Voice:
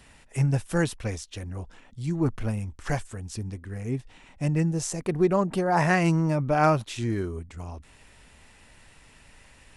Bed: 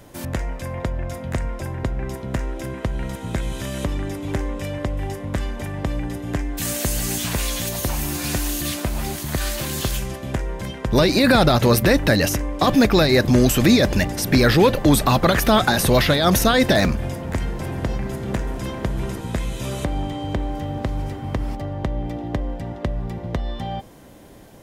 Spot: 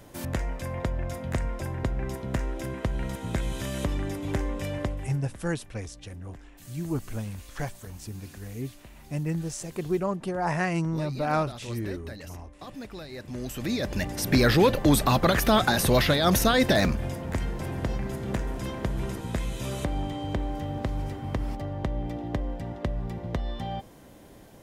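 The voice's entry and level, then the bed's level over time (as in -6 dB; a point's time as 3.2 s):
4.70 s, -5.0 dB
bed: 4.84 s -4 dB
5.45 s -25 dB
13.11 s -25 dB
14.26 s -5 dB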